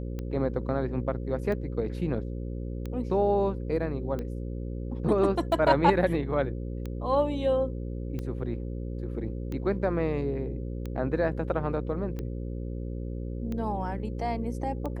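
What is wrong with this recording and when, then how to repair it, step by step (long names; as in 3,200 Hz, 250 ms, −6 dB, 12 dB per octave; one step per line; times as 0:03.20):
mains buzz 60 Hz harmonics 9 −34 dBFS
scratch tick 45 rpm −23 dBFS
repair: click removal
hum removal 60 Hz, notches 9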